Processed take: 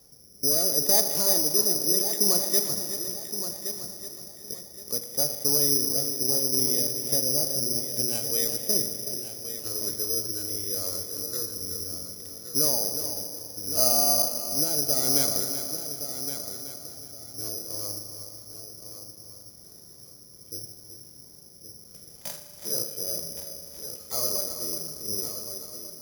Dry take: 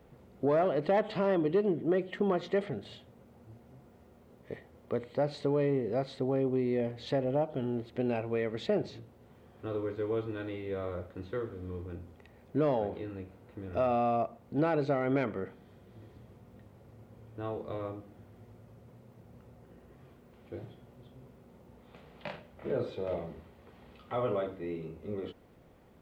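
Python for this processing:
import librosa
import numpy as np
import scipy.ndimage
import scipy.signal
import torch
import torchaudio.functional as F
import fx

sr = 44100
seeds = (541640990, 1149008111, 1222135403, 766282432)

p1 = fx.rotary(x, sr, hz=0.7)
p2 = p1 + fx.echo_heads(p1, sr, ms=373, heads='first and third', feedback_pct=46, wet_db=-10, dry=0)
p3 = fx.rev_spring(p2, sr, rt60_s=3.1, pass_ms=(39,), chirp_ms=30, drr_db=8.5)
p4 = (np.kron(scipy.signal.resample_poly(p3, 1, 8), np.eye(8)[0]) * 8)[:len(p3)]
y = F.gain(torch.from_numpy(p4), -3.0).numpy()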